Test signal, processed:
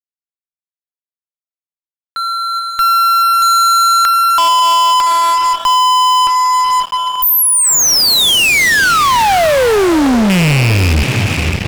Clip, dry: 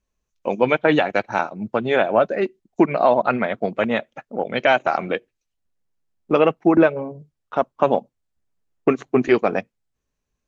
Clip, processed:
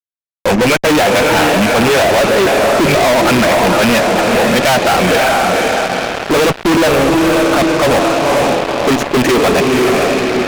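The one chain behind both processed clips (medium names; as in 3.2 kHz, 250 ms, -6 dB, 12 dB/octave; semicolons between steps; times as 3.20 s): rattle on loud lows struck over -27 dBFS, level -18 dBFS; echo that smears into a reverb 509 ms, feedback 47%, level -11 dB; fuzz box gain 38 dB, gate -40 dBFS; trim +4 dB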